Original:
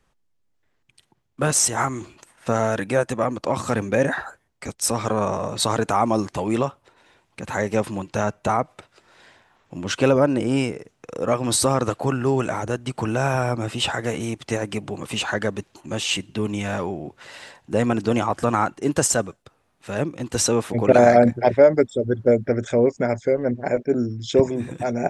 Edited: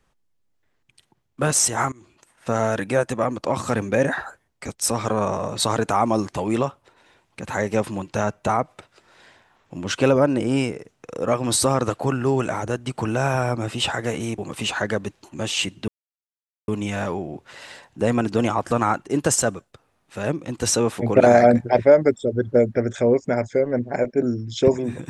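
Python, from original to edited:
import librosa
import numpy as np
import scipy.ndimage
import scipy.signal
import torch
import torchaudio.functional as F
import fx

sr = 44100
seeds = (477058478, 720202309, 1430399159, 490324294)

y = fx.edit(x, sr, fx.fade_in_from(start_s=1.92, length_s=0.71, floor_db=-23.5),
    fx.cut(start_s=14.38, length_s=0.52),
    fx.insert_silence(at_s=16.4, length_s=0.8), tone=tone)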